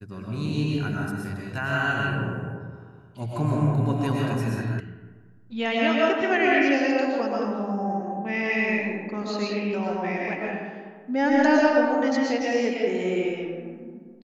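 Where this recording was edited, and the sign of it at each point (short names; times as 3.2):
4.8 sound cut off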